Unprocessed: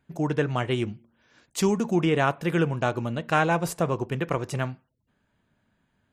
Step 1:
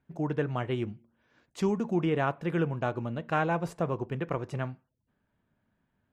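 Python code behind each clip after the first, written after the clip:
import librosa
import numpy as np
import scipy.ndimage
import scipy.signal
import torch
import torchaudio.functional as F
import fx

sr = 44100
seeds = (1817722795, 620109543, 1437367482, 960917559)

y = fx.lowpass(x, sr, hz=1900.0, slope=6)
y = y * librosa.db_to_amplitude(-4.5)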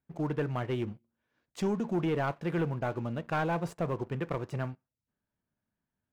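y = fx.leveller(x, sr, passes=2)
y = y * librosa.db_to_amplitude(-8.0)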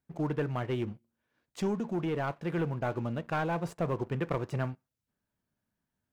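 y = fx.rider(x, sr, range_db=10, speed_s=0.5)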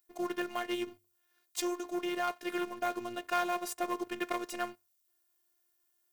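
y = fx.robotise(x, sr, hz=353.0)
y = fx.riaa(y, sr, side='recording')
y = fx.hum_notches(y, sr, base_hz=50, count=2)
y = y * librosa.db_to_amplitude(3.0)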